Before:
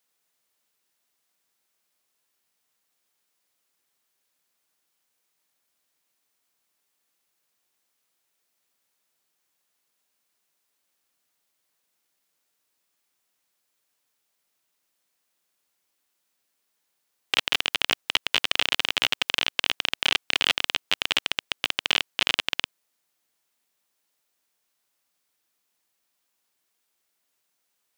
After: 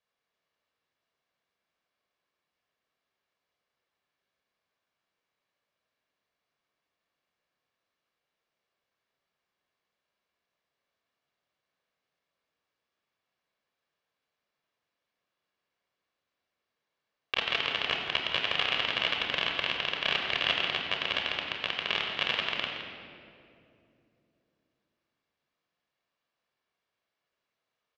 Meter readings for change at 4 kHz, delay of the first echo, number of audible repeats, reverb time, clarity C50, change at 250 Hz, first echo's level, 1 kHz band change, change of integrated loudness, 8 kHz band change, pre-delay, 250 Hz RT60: −5.5 dB, 167 ms, 1, 2.6 s, 2.5 dB, −2.0 dB, −10.5 dB, −1.5 dB, −4.5 dB, −17.5 dB, 28 ms, 3.8 s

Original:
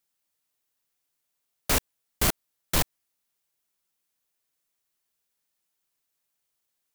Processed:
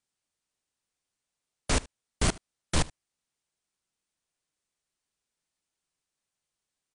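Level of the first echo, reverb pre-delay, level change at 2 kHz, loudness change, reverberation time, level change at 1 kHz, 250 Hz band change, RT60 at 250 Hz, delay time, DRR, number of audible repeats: −22.0 dB, no reverb audible, −3.0 dB, −4.0 dB, no reverb audible, −2.5 dB, +0.5 dB, no reverb audible, 75 ms, no reverb audible, 1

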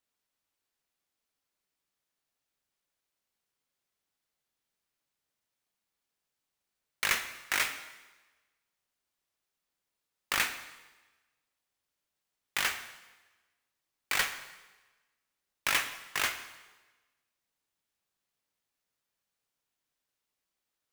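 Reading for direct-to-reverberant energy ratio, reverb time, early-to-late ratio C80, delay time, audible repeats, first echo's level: 8.5 dB, 1.2 s, 12.5 dB, no echo audible, no echo audible, no echo audible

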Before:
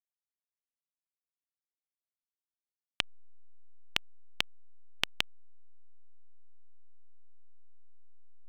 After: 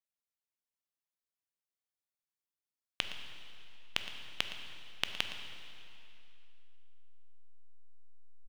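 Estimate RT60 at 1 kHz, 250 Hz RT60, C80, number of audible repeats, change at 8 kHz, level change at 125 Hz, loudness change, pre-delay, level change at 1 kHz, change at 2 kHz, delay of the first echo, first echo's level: 2.7 s, 2.8 s, 7.0 dB, 1, −2.0 dB, −1.5 dB, −3.5 dB, 6 ms, −2.0 dB, −2.0 dB, 115 ms, −14.5 dB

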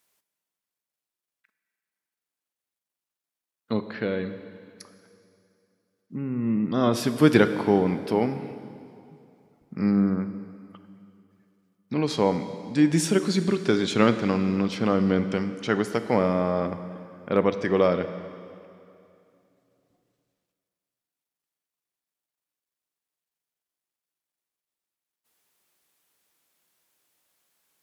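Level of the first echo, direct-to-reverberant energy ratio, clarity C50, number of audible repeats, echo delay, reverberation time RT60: no echo audible, 10.0 dB, 11.0 dB, no echo audible, no echo audible, 2.6 s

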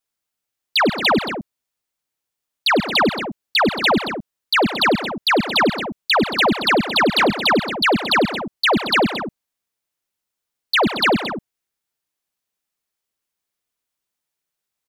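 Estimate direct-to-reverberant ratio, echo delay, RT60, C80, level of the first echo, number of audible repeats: no reverb audible, 99 ms, no reverb audible, no reverb audible, −14.5 dB, 3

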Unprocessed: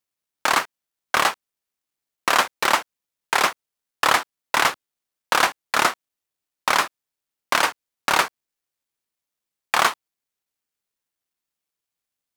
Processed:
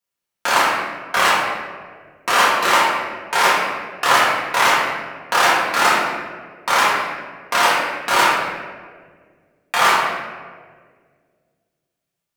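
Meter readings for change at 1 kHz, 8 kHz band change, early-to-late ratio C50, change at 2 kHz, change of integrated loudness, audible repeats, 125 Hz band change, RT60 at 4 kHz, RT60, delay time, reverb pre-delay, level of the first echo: +6.0 dB, +3.0 dB, −2.0 dB, +5.5 dB, +4.0 dB, no echo audible, +5.0 dB, 0.95 s, 1.7 s, no echo audible, 4 ms, no echo audible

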